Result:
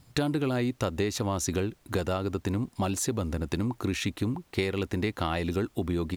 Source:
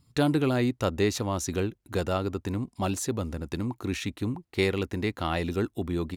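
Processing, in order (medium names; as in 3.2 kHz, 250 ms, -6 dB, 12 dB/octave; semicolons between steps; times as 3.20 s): compression, threshold -30 dBFS, peak gain reduction 10 dB; added noise pink -70 dBFS; trim +5 dB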